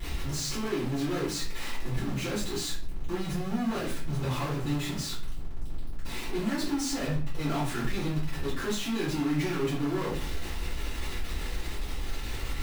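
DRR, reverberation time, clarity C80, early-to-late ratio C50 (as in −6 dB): −10.0 dB, 0.45 s, 10.5 dB, 5.5 dB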